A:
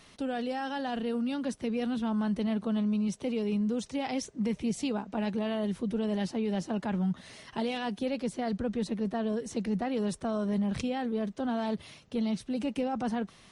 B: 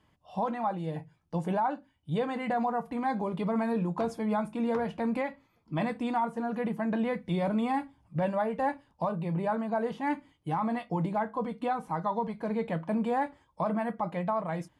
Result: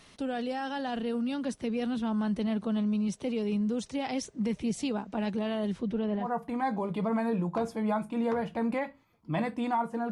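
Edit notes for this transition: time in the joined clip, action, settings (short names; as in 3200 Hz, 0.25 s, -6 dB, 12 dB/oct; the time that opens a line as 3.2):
A
5.72–6.32 LPF 7600 Hz -> 1300 Hz
6.24 switch to B from 2.67 s, crossfade 0.16 s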